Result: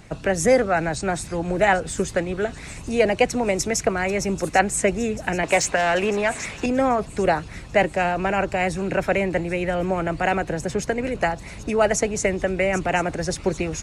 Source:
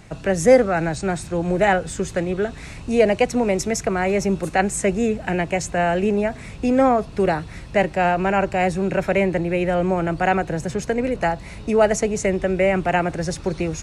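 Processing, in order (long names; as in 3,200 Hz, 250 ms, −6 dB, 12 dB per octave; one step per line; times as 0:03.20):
delay with a high-pass on its return 788 ms, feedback 58%, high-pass 4,100 Hz, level −11.5 dB
0:05.43–0:06.66: mid-hump overdrive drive 14 dB, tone 5,200 Hz, clips at −9 dBFS
harmonic and percussive parts rebalanced harmonic −7 dB
level +2.5 dB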